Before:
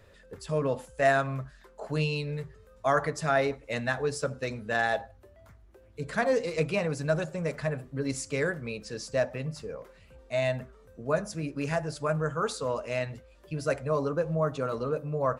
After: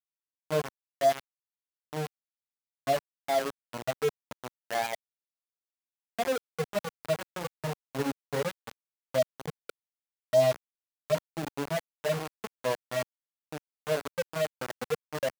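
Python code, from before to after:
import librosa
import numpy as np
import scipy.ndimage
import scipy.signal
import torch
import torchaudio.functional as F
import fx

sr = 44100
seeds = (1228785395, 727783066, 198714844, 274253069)

y = fx.hpss_only(x, sr, part='harmonic')
y = scipy.signal.sosfilt(scipy.signal.butter(4, 1300.0, 'lowpass', fs=sr, output='sos'), y)
y = fx.peak_eq(y, sr, hz=710.0, db=5.5, octaves=0.44)
y = fx.rider(y, sr, range_db=4, speed_s=0.5)
y = fx.dereverb_blind(y, sr, rt60_s=1.6)
y = np.where(np.abs(y) >= 10.0 ** (-27.5 / 20.0), y, 0.0)
y = fx.highpass(y, sr, hz=150.0, slope=6)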